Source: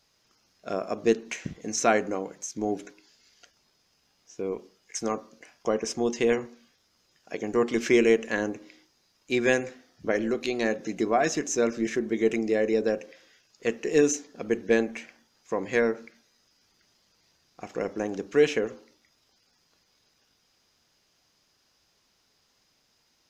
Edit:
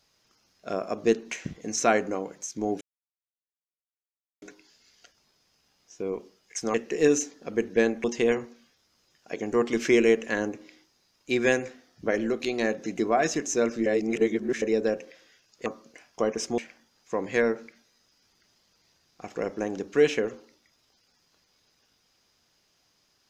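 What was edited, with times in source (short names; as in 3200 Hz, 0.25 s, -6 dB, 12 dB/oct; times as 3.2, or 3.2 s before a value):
2.81 insert silence 1.61 s
5.13–6.05 swap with 13.67–14.97
11.87–12.63 reverse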